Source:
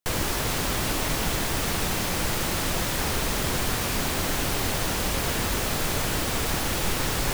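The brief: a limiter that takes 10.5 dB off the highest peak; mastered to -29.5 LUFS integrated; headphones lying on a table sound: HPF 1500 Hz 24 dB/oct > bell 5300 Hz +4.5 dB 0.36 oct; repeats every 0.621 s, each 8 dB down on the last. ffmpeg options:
-af "alimiter=limit=-22.5dB:level=0:latency=1,highpass=f=1.5k:w=0.5412,highpass=f=1.5k:w=1.3066,equalizer=f=5.3k:t=o:w=0.36:g=4.5,aecho=1:1:621|1242|1863|2484|3105:0.398|0.159|0.0637|0.0255|0.0102,volume=2dB"

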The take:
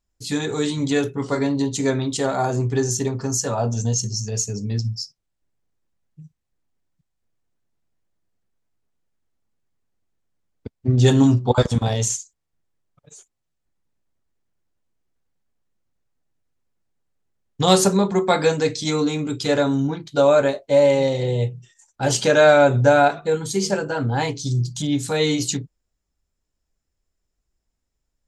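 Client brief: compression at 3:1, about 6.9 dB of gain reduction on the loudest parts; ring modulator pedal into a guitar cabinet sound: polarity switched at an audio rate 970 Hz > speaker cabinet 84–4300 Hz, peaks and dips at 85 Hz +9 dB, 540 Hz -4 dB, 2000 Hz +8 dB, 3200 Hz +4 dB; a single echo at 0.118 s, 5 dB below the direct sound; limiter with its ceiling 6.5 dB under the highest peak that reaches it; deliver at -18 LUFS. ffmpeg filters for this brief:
-af "acompressor=threshold=-19dB:ratio=3,alimiter=limit=-15dB:level=0:latency=1,aecho=1:1:118:0.562,aeval=exprs='val(0)*sgn(sin(2*PI*970*n/s))':c=same,highpass=84,equalizer=f=85:t=q:w=4:g=9,equalizer=f=540:t=q:w=4:g=-4,equalizer=f=2k:t=q:w=4:g=8,equalizer=f=3.2k:t=q:w=4:g=4,lowpass=f=4.3k:w=0.5412,lowpass=f=4.3k:w=1.3066,volume=4dB"

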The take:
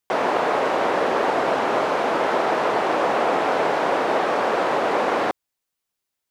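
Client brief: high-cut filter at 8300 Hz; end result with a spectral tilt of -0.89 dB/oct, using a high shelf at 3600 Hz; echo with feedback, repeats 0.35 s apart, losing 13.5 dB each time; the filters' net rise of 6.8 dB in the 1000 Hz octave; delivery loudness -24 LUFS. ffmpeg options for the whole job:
-af "lowpass=8.3k,equalizer=f=1k:t=o:g=8,highshelf=f=3.6k:g=8,aecho=1:1:350|700:0.211|0.0444,volume=-8dB"

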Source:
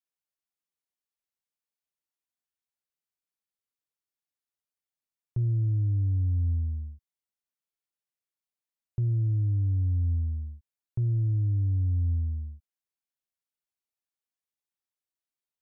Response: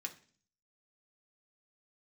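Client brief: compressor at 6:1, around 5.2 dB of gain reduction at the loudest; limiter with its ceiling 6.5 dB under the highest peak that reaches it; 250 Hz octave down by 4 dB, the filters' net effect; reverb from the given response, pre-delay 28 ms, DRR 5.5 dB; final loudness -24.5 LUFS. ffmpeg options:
-filter_complex "[0:a]equalizer=f=250:t=o:g=-8.5,acompressor=threshold=-30dB:ratio=6,alimiter=level_in=7dB:limit=-24dB:level=0:latency=1,volume=-7dB,asplit=2[a][b];[1:a]atrim=start_sample=2205,adelay=28[c];[b][c]afir=irnorm=-1:irlink=0,volume=-4dB[d];[a][d]amix=inputs=2:normalize=0,volume=12dB"

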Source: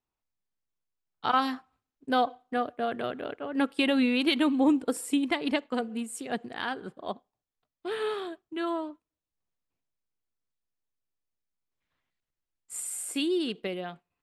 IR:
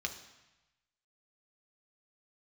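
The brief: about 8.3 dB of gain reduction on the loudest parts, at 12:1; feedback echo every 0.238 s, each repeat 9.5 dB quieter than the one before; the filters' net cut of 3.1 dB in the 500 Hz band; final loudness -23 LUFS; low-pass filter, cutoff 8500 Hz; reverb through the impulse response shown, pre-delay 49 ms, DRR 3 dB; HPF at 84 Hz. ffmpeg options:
-filter_complex "[0:a]highpass=84,lowpass=8.5k,equalizer=f=500:t=o:g=-4,acompressor=threshold=-29dB:ratio=12,aecho=1:1:238|476|714|952:0.335|0.111|0.0365|0.012,asplit=2[a][b];[1:a]atrim=start_sample=2205,adelay=49[c];[b][c]afir=irnorm=-1:irlink=0,volume=-5dB[d];[a][d]amix=inputs=2:normalize=0,volume=11.5dB"

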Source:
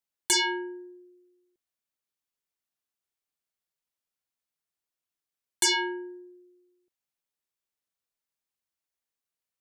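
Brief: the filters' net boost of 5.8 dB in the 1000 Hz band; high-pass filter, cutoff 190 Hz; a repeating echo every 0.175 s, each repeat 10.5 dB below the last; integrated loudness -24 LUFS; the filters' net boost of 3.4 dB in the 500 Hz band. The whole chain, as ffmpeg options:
-af "highpass=190,equalizer=f=500:t=o:g=6.5,equalizer=f=1k:t=o:g=4.5,aecho=1:1:175|350|525:0.299|0.0896|0.0269,volume=1dB"

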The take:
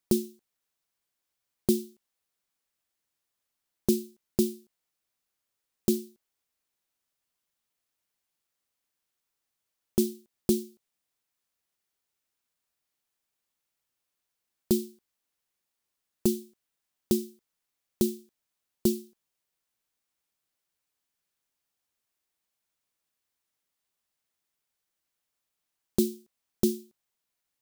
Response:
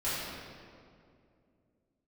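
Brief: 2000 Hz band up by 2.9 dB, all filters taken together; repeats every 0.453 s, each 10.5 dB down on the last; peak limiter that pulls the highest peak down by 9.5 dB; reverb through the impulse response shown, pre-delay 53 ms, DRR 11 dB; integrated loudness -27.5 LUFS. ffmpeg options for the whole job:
-filter_complex "[0:a]equalizer=f=2k:t=o:g=4,alimiter=limit=-19.5dB:level=0:latency=1,aecho=1:1:453|906|1359:0.299|0.0896|0.0269,asplit=2[a][b];[1:a]atrim=start_sample=2205,adelay=53[c];[b][c]afir=irnorm=-1:irlink=0,volume=-19dB[d];[a][d]amix=inputs=2:normalize=0,volume=10dB"

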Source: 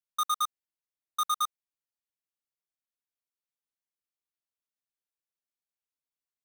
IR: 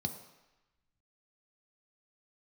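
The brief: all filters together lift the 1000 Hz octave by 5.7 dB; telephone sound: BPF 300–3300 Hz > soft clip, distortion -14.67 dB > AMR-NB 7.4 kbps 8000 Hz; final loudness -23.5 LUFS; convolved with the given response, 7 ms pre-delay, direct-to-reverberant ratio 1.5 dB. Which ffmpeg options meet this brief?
-filter_complex "[0:a]equalizer=f=1k:t=o:g=8,asplit=2[a][b];[1:a]atrim=start_sample=2205,adelay=7[c];[b][c]afir=irnorm=-1:irlink=0,volume=-2.5dB[d];[a][d]amix=inputs=2:normalize=0,highpass=300,lowpass=3.3k,asoftclip=threshold=-22dB,volume=8dB" -ar 8000 -c:a libopencore_amrnb -b:a 7400

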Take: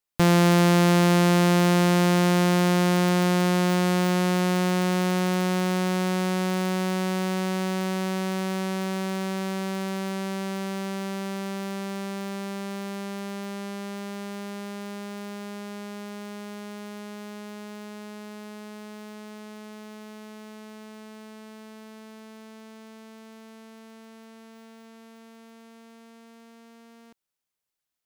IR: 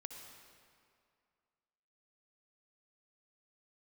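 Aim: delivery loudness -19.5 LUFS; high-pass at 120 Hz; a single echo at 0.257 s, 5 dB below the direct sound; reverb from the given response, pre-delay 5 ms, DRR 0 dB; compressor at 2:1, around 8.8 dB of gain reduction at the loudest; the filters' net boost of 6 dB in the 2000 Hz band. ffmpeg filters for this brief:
-filter_complex "[0:a]highpass=120,equalizer=f=2k:t=o:g=7.5,acompressor=threshold=-29dB:ratio=2,aecho=1:1:257:0.562,asplit=2[a][b];[1:a]atrim=start_sample=2205,adelay=5[c];[b][c]afir=irnorm=-1:irlink=0,volume=4dB[d];[a][d]amix=inputs=2:normalize=0,volume=7.5dB"

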